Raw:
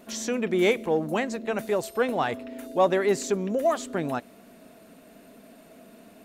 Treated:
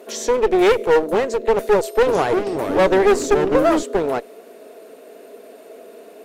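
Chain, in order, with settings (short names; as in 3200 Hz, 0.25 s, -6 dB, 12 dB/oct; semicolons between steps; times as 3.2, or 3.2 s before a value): resonant high-pass 430 Hz, resonance Q 4.9; one-sided clip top -25.5 dBFS, bottom -11 dBFS; 1.77–3.83 echoes that change speed 0.297 s, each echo -4 st, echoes 3, each echo -6 dB; gain +5 dB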